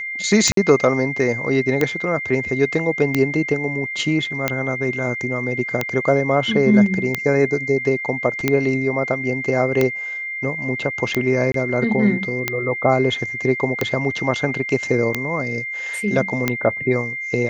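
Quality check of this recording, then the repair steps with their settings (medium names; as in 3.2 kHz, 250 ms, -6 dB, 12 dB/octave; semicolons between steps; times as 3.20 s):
tick 45 rpm -4 dBFS
whine 2.1 kHz -25 dBFS
0.52–0.57 s: dropout 53 ms
11.52–11.54 s: dropout 23 ms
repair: de-click; band-stop 2.1 kHz, Q 30; interpolate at 0.52 s, 53 ms; interpolate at 11.52 s, 23 ms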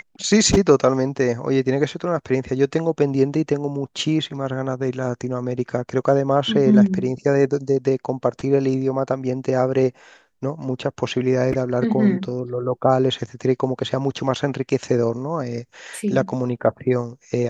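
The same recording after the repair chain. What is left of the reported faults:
nothing left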